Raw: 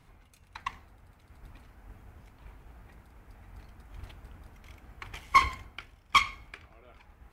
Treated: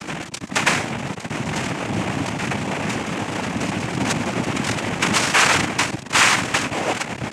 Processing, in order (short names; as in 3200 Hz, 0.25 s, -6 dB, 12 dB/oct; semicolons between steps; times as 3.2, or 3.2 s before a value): fuzz box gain 52 dB, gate -59 dBFS; noise vocoder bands 4